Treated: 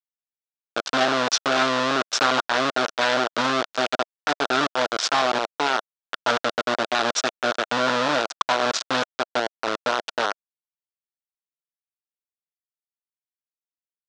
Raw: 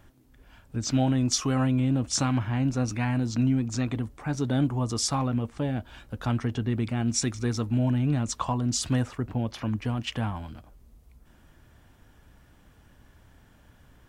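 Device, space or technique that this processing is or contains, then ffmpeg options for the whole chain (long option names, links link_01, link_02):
hand-held game console: -af "acrusher=bits=3:mix=0:aa=0.000001,highpass=470,equalizer=frequency=650:width_type=q:width=4:gain=4,equalizer=frequency=1400:width_type=q:width=4:gain=8,equalizer=frequency=2100:width_type=q:width=4:gain=-3,equalizer=frequency=3600:width_type=q:width=4:gain=4,lowpass=frequency=5800:width=0.5412,lowpass=frequency=5800:width=1.3066,volume=5.5dB"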